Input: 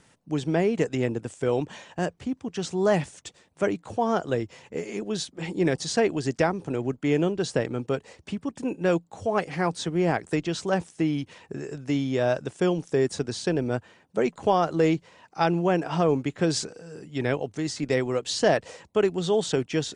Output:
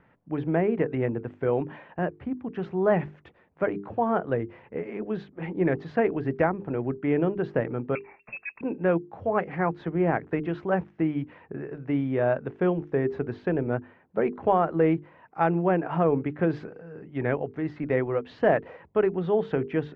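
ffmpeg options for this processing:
-filter_complex "[0:a]asettb=1/sr,asplit=3[a][b][c];[a]atrim=end=7.954[d];[b]atrim=start=7.95:end=8.61,asetpts=PTS-STARTPTS,afade=t=in:d=0.004:c=qsin,afade=t=out:st=0.656:d=0.004:c=qsin,lowpass=f=2.4k:t=q:w=0.5098,lowpass=f=2.4k:t=q:w=0.6013,lowpass=f=2.4k:t=q:w=0.9,lowpass=f=2.4k:t=q:w=2.563,afreqshift=-2800[e];[c]atrim=start=8.606[f];[d][e]acrossfade=d=0.004:c1=hsin:c2=qsin[g];[g][f]acrossfade=d=0.004:c1=qsin:c2=hsin,lowpass=f=2.1k:w=0.5412,lowpass=f=2.1k:w=1.3066,bandreject=f=50:t=h:w=6,bandreject=f=100:t=h:w=6,bandreject=f=150:t=h:w=6,bandreject=f=200:t=h:w=6,bandreject=f=250:t=h:w=6,bandreject=f=300:t=h:w=6,bandreject=f=350:t=h:w=6,bandreject=f=400:t=h:w=6,bandreject=f=450:t=h:w=6"

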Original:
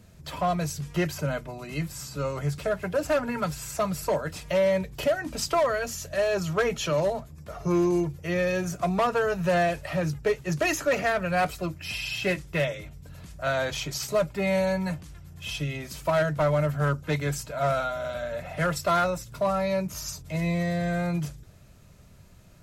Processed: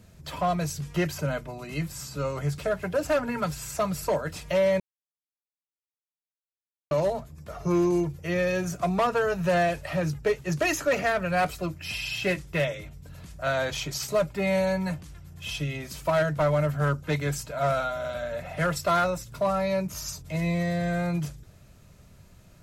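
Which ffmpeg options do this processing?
-filter_complex "[0:a]asplit=3[a][b][c];[a]atrim=end=4.8,asetpts=PTS-STARTPTS,afade=t=out:st=4.796:d=0.004:c=hsin[d];[b]atrim=start=4.8:end=6.91,asetpts=PTS-STARTPTS,volume=0[e];[c]atrim=start=6.91,asetpts=PTS-STARTPTS,afade=t=in:d=0.004:c=hsin[f];[d][e][f]concat=n=3:v=0:a=1"

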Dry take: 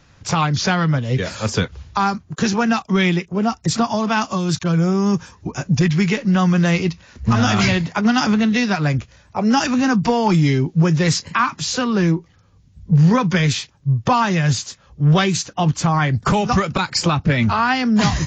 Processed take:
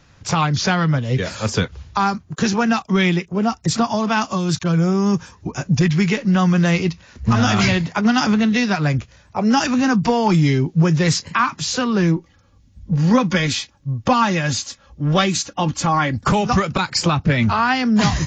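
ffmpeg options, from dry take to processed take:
-filter_complex "[0:a]asettb=1/sr,asplit=3[a][b][c];[a]atrim=end=12.164[d];[b]atrim=start=12.16:end=16.28,asetpts=PTS-STARTPTS,afade=t=in:d=0.004:c=qsin,afade=t=out:st=4.116:d=0.004:c=qsin,aecho=1:1:3.6:0.52,atrim=end_sample=181692[e];[c]atrim=start=16.276[f];[d][e]acrossfade=d=0.004:c1=hsin:c2=qsin[g];[g][f]acrossfade=d=0.004:c1=qsin:c2=hsin"

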